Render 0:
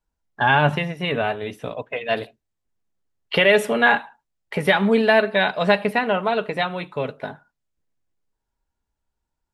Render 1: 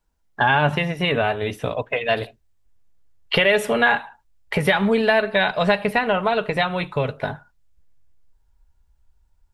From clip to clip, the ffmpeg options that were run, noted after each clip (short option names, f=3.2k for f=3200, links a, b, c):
-af "asubboost=boost=6:cutoff=95,acompressor=threshold=-26dB:ratio=2,volume=6.5dB"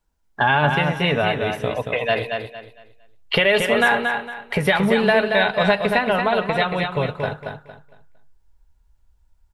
-af "aecho=1:1:229|458|687|916:0.531|0.149|0.0416|0.0117"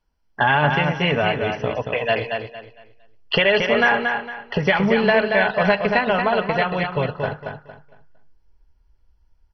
-ar 32000 -c:a mp2 -b:a 32k